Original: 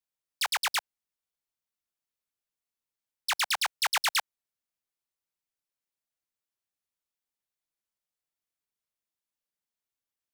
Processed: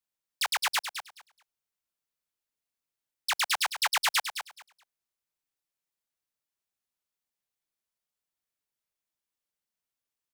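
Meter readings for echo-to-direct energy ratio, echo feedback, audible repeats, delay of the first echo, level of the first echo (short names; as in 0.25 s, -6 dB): -9.0 dB, 18%, 2, 0.212 s, -9.0 dB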